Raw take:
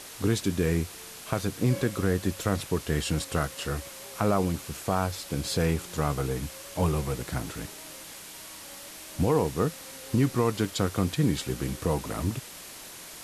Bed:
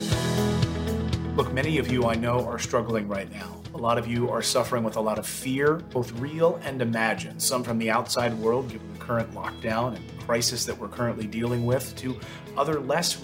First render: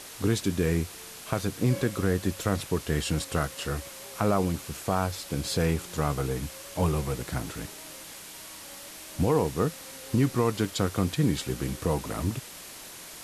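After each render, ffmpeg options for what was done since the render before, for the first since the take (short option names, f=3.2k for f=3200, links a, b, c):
-af anull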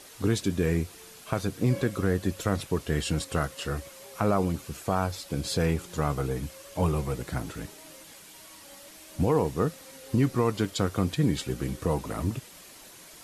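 -af "afftdn=nr=7:nf=-44"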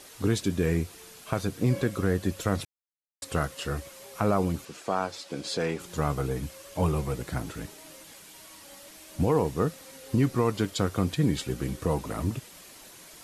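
-filter_complex "[0:a]asettb=1/sr,asplit=3[a][b][c];[a]atrim=end=4.654[d];[b]atrim=start=4.65:end=5.8,asetpts=PTS-STARTPTS,afade=t=in:d=0.004:c=qsin,afade=t=out:st=1.146:d=0.004:c=qsin,highpass=250,lowpass=7.2k[e];[c]atrim=start=5.796[f];[d][e]acrossfade=d=0.004:c1=hsin:c2=qsin[g];[g][f]acrossfade=d=0.004:c1=qsin:c2=hsin,asplit=3[h][i][j];[h]atrim=end=2.65,asetpts=PTS-STARTPTS,afade=t=out:st=2.646:d=0.004:c=hsin[k];[i]atrim=start=2.65:end=3.22,asetpts=PTS-STARTPTS,volume=0[l];[j]atrim=start=3.22,asetpts=PTS-STARTPTS,afade=t=in:d=0.004:c=hsin[m];[k][l][m]concat=n=3:v=0:a=1"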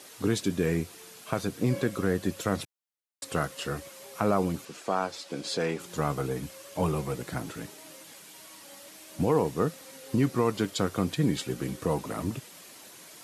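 -af "highpass=130"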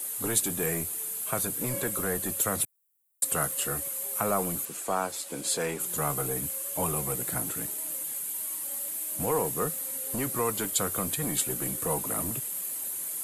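-filter_complex "[0:a]acrossover=split=490|850[a][b][c];[a]asoftclip=type=tanh:threshold=-31.5dB[d];[c]aexciter=amount=7.7:drive=6.6:freq=7.7k[e];[d][b][e]amix=inputs=3:normalize=0"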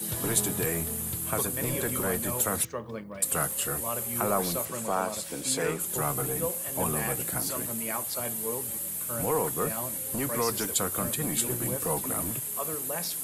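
-filter_complex "[1:a]volume=-11.5dB[a];[0:a][a]amix=inputs=2:normalize=0"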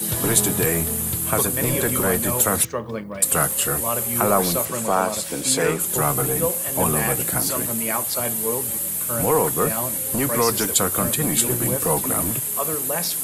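-af "volume=8.5dB,alimiter=limit=-2dB:level=0:latency=1"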